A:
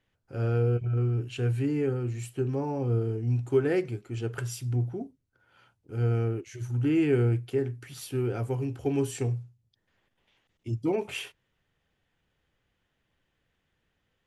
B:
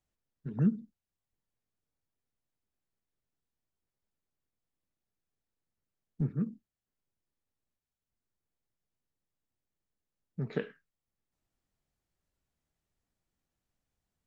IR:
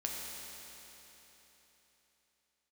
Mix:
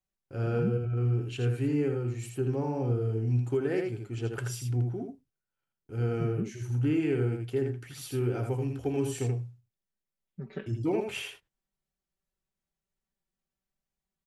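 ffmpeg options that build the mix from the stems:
-filter_complex "[0:a]agate=range=-31dB:threshold=-55dB:ratio=16:detection=peak,volume=-1.5dB,asplit=2[link_01][link_02];[link_02]volume=-5dB[link_03];[1:a]aecho=1:1:5.2:0.94,volume=-7.5dB[link_04];[link_03]aecho=0:1:81:1[link_05];[link_01][link_04][link_05]amix=inputs=3:normalize=0,alimiter=limit=-19dB:level=0:latency=1:release=358"

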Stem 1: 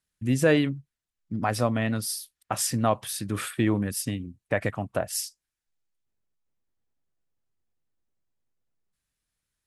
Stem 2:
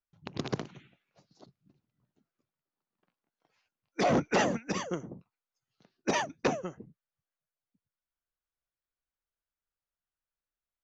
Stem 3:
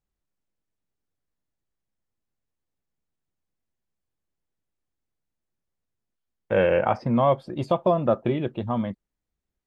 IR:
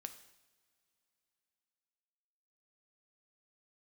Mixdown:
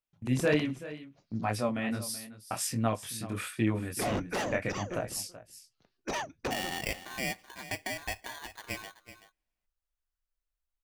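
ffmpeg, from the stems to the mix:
-filter_complex "[0:a]agate=range=-16dB:threshold=-42dB:ratio=16:detection=peak,equalizer=frequency=2400:width=5.3:gain=5.5,flanger=delay=17.5:depth=6.2:speed=1.4,volume=-3dB,asplit=2[link_01][link_02];[link_02]volume=-15.5dB[link_03];[1:a]asubboost=boost=9.5:cutoff=58,asoftclip=type=hard:threshold=-26dB,volume=-3dB,asplit=2[link_04][link_05];[link_05]volume=-22.5dB[link_06];[2:a]acompressor=threshold=-23dB:ratio=3,bandpass=frequency=1500:width_type=q:width=1.6:csg=0,aeval=exprs='val(0)*sgn(sin(2*PI*1300*n/s))':channel_layout=same,volume=-1.5dB,asplit=3[link_07][link_08][link_09];[link_08]volume=-12.5dB[link_10];[link_09]volume=-12.5dB[link_11];[3:a]atrim=start_sample=2205[link_12];[link_10][link_12]afir=irnorm=-1:irlink=0[link_13];[link_03][link_06][link_11]amix=inputs=3:normalize=0,aecho=0:1:380:1[link_14];[link_01][link_04][link_07][link_13][link_14]amix=inputs=5:normalize=0"

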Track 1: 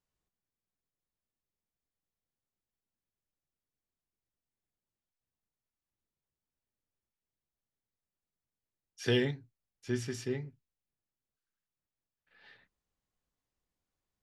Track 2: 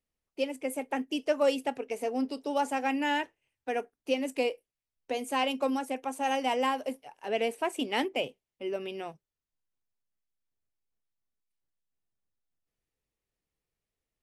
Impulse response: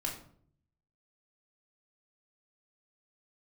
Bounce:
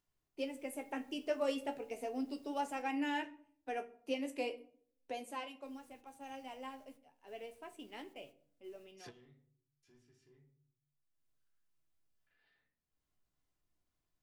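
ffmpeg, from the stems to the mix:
-filter_complex "[0:a]acompressor=mode=upward:threshold=-30dB:ratio=2.5,asoftclip=type=tanh:threshold=-26dB,volume=-15.5dB,asplit=3[link_01][link_02][link_03];[link_01]atrim=end=2.82,asetpts=PTS-STARTPTS,afade=type=out:start_time=2.816:duration=0.004:curve=hsin[link_04];[link_02]atrim=start=2.82:end=5.65,asetpts=PTS-STARTPTS,volume=0[link_05];[link_03]atrim=start=5.65,asetpts=PTS-STARTPTS,afade=type=in:duration=0.004:curve=hsin[link_06];[link_04][link_05][link_06]concat=n=3:v=0:a=1,asplit=2[link_07][link_08];[link_08]volume=-20.5dB[link_09];[1:a]equalizer=frequency=60:width=0.48:gain=5,flanger=delay=9.5:depth=5.8:regen=42:speed=0.38:shape=sinusoidal,volume=-7.5dB,afade=type=out:start_time=5.08:duration=0.44:silence=0.281838,asplit=3[link_10][link_11][link_12];[link_11]volume=-8.5dB[link_13];[link_12]apad=whole_len=627223[link_14];[link_07][link_14]sidechaingate=range=-33dB:threshold=-59dB:ratio=16:detection=peak[link_15];[2:a]atrim=start_sample=2205[link_16];[link_09][link_13]amix=inputs=2:normalize=0[link_17];[link_17][link_16]afir=irnorm=-1:irlink=0[link_18];[link_15][link_10][link_18]amix=inputs=3:normalize=0"

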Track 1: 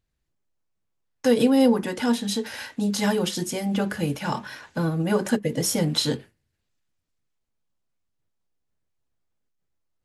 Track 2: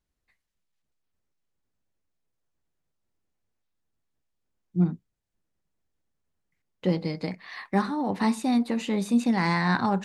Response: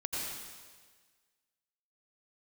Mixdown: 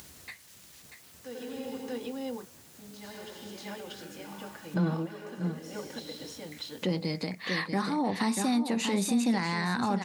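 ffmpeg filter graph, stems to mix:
-filter_complex "[0:a]highpass=240,lowpass=3600,volume=-4dB,asplit=3[link_01][link_02][link_03];[link_01]atrim=end=1.82,asetpts=PTS-STARTPTS,afade=type=out:start_time=1.816:duration=0.004:curve=hsin[link_04];[link_02]atrim=start=1.82:end=2.75,asetpts=PTS-STARTPTS,volume=0[link_05];[link_03]atrim=start=2.75,asetpts=PTS-STARTPTS,afade=type=in:duration=0.004:curve=hsin[link_06];[link_04][link_05][link_06]concat=n=3:v=0:a=1,asplit=3[link_07][link_08][link_09];[link_08]volume=-19dB[link_10];[link_09]volume=-13.5dB[link_11];[1:a]acompressor=mode=upward:threshold=-24dB:ratio=2.5,volume=-1.5dB,asplit=3[link_12][link_13][link_14];[link_13]volume=-9dB[link_15];[link_14]apad=whole_len=443044[link_16];[link_07][link_16]sidechaingate=range=-33dB:threshold=-44dB:ratio=16:detection=peak[link_17];[2:a]atrim=start_sample=2205[link_18];[link_10][link_18]afir=irnorm=-1:irlink=0[link_19];[link_11][link_15]amix=inputs=2:normalize=0,aecho=0:1:638:1[link_20];[link_17][link_12][link_19][link_20]amix=inputs=4:normalize=0,highpass=frequency=75:width=0.5412,highpass=frequency=75:width=1.3066,highshelf=frequency=3600:gain=9.5,alimiter=limit=-19dB:level=0:latency=1:release=82"

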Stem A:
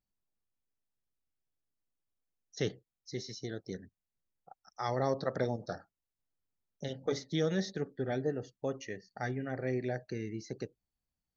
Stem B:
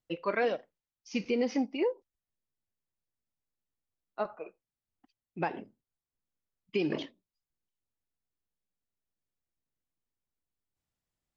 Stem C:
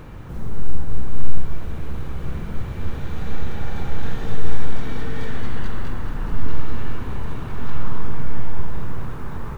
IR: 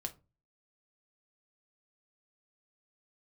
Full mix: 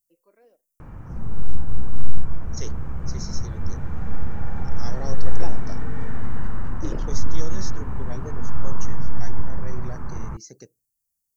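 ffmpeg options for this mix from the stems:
-filter_complex "[0:a]volume=-6dB,asplit=3[link_01][link_02][link_03];[link_02]volume=-22dB[link_04];[1:a]equalizer=frequency=380:width=0.6:gain=10.5,volume=-11dB[link_05];[2:a]lowpass=1400,equalizer=frequency=420:width_type=o:width=1.1:gain=-6,adelay=800,volume=-0.5dB[link_06];[link_03]apad=whole_len=501156[link_07];[link_05][link_07]sidechaingate=range=-26dB:threshold=-59dB:ratio=16:detection=peak[link_08];[3:a]atrim=start_sample=2205[link_09];[link_04][link_09]afir=irnorm=-1:irlink=0[link_10];[link_01][link_08][link_06][link_10]amix=inputs=4:normalize=0,aexciter=amount=5.7:drive=9.1:freq=5500"

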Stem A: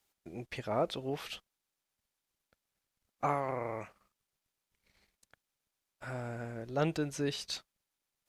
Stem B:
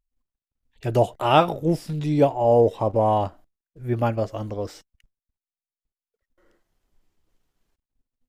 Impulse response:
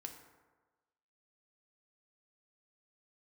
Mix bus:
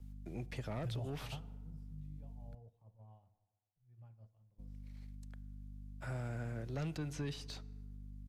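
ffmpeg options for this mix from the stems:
-filter_complex "[0:a]asoftclip=type=tanh:threshold=-28dB,equalizer=frequency=140:width=1.5:gain=7,aeval=exprs='val(0)+0.00447*(sin(2*PI*50*n/s)+sin(2*PI*2*50*n/s)/2+sin(2*PI*3*50*n/s)/3+sin(2*PI*4*50*n/s)/4+sin(2*PI*5*50*n/s)/5)':channel_layout=same,volume=-2.5dB,asplit=3[link_01][link_02][link_03];[link_01]atrim=end=2.55,asetpts=PTS-STARTPTS,afade=type=out:start_time=2.546:duration=0.004:curve=hsin[link_04];[link_02]atrim=start=2.55:end=4.58,asetpts=PTS-STARTPTS,volume=0[link_05];[link_03]atrim=start=4.58,asetpts=PTS-STARTPTS,afade=type=in:duration=0.004:curve=hsin[link_06];[link_04][link_05][link_06]concat=n=3:v=0:a=1,asplit=3[link_07][link_08][link_09];[link_08]volume=-9.5dB[link_10];[1:a]firequalizer=gain_entry='entry(180,0);entry(270,-21);entry(770,-15)':delay=0.05:min_phase=1,alimiter=limit=-23.5dB:level=0:latency=1:release=45,volume=-4dB,asplit=2[link_11][link_12];[link_12]volume=-22.5dB[link_13];[link_09]apad=whole_len=369699[link_14];[link_11][link_14]sidechaingate=range=-33dB:threshold=-42dB:ratio=16:detection=peak[link_15];[2:a]atrim=start_sample=2205[link_16];[link_10][link_13]amix=inputs=2:normalize=0[link_17];[link_17][link_16]afir=irnorm=-1:irlink=0[link_18];[link_07][link_15][link_18]amix=inputs=3:normalize=0,agate=range=-8dB:threshold=-56dB:ratio=16:detection=peak,acrossover=split=260|580|1200|5000[link_19][link_20][link_21][link_22][link_23];[link_19]acompressor=threshold=-39dB:ratio=4[link_24];[link_20]acompressor=threshold=-50dB:ratio=4[link_25];[link_21]acompressor=threshold=-54dB:ratio=4[link_26];[link_22]acompressor=threshold=-52dB:ratio=4[link_27];[link_23]acompressor=threshold=-58dB:ratio=4[link_28];[link_24][link_25][link_26][link_27][link_28]amix=inputs=5:normalize=0"

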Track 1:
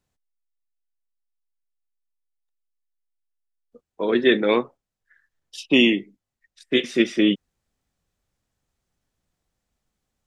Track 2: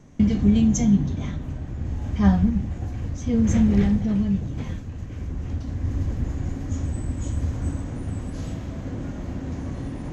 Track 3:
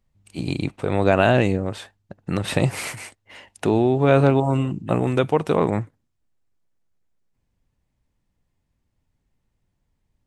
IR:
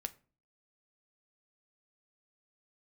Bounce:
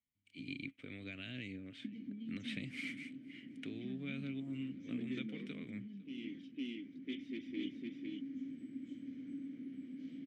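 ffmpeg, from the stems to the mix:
-filter_complex "[0:a]asoftclip=type=hard:threshold=-15.5dB,adelay=350,volume=-13dB,asplit=2[link_01][link_02];[link_02]volume=-3.5dB[link_03];[1:a]highpass=frequency=150:width=0.5412,highpass=frequency=150:width=1.3066,acompressor=threshold=-28dB:ratio=6,bandreject=frequency=6700:width=7.2,adelay=1650,volume=-6dB[link_04];[2:a]equalizer=frequency=300:width_type=o:width=1.6:gain=-12.5,acrossover=split=160|3000[link_05][link_06][link_07];[link_06]acompressor=threshold=-28dB:ratio=6[link_08];[link_05][link_08][link_07]amix=inputs=3:normalize=0,volume=-1.5dB,asplit=3[link_09][link_10][link_11];[link_10]volume=-23.5dB[link_12];[link_11]apad=whole_len=468059[link_13];[link_01][link_13]sidechaincompress=threshold=-50dB:ratio=10:attack=16:release=390[link_14];[link_03][link_12]amix=inputs=2:normalize=0,aecho=0:1:506:1[link_15];[link_14][link_04][link_09][link_15]amix=inputs=4:normalize=0,asplit=3[link_16][link_17][link_18];[link_16]bandpass=frequency=270:width_type=q:width=8,volume=0dB[link_19];[link_17]bandpass=frequency=2290:width_type=q:width=8,volume=-6dB[link_20];[link_18]bandpass=frequency=3010:width_type=q:width=8,volume=-9dB[link_21];[link_19][link_20][link_21]amix=inputs=3:normalize=0"

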